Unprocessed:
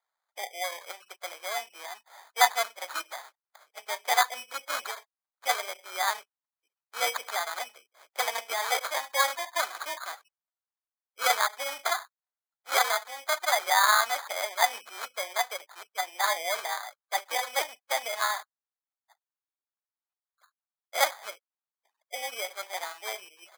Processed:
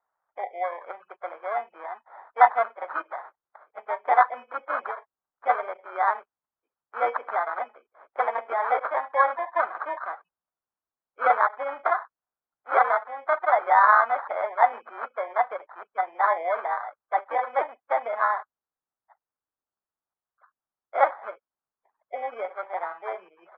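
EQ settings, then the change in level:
low-pass filter 1,500 Hz 24 dB per octave
+7.0 dB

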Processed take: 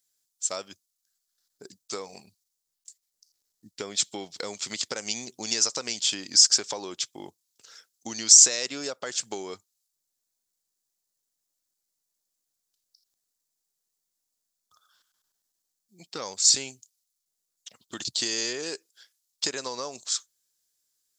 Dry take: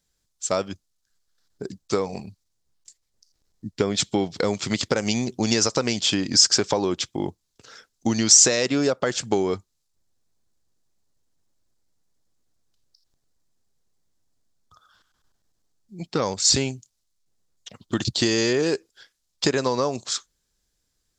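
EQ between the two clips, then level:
RIAA equalisation recording
−10.0 dB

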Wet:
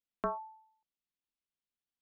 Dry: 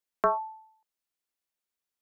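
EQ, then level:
high-frequency loss of the air 260 metres
flat-topped bell 900 Hz −9 dB 2.8 octaves
0.0 dB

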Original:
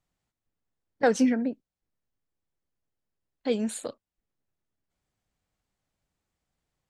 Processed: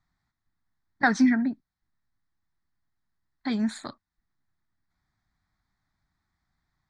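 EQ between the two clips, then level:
low-pass with resonance 3,800 Hz, resonance Q 2.2
parametric band 1,900 Hz +6 dB 0.29 octaves
phaser with its sweep stopped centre 1,200 Hz, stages 4
+6.0 dB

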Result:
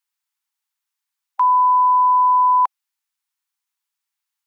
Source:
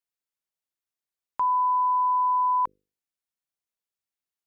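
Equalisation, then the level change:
linear-phase brick-wall high-pass 780 Hz
+8.5 dB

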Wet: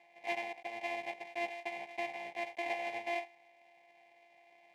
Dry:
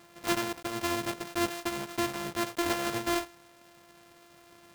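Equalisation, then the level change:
pair of resonant band-passes 1,300 Hz, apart 1.5 octaves
notch filter 1,400 Hz, Q 16
+3.5 dB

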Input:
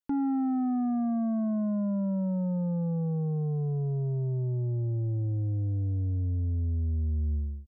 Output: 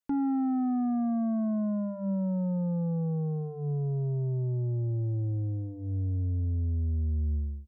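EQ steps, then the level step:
mains-hum notches 50/100/150/200 Hz
0.0 dB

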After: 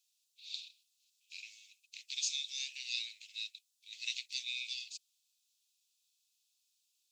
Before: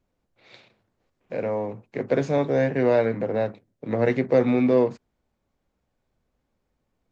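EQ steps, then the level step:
Chebyshev high-pass with heavy ripple 2,500 Hz, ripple 3 dB
high shelf with overshoot 3,500 Hz +7 dB, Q 1.5
+6.5 dB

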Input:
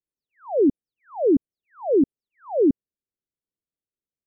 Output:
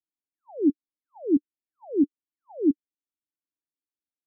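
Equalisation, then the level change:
formant resonators in series u
0.0 dB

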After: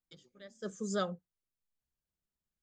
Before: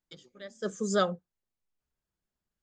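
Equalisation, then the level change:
bass and treble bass +4 dB, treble +2 dB
−8.0 dB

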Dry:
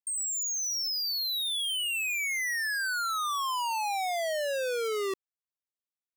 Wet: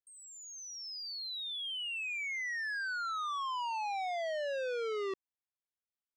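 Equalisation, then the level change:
high-frequency loss of the air 160 metres
−4.5 dB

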